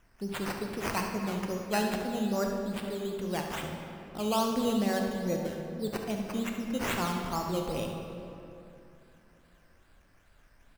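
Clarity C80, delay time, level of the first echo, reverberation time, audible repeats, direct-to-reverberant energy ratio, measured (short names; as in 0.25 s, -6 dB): 4.5 dB, 70 ms, -10.0 dB, 2.9 s, 1, 1.5 dB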